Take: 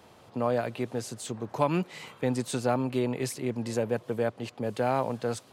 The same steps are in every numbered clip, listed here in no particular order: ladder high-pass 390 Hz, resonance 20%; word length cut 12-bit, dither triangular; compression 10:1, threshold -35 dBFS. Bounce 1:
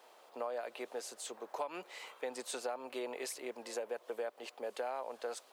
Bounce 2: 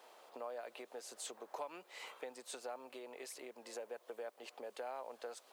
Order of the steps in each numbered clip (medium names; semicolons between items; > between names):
word length cut > ladder high-pass > compression; compression > word length cut > ladder high-pass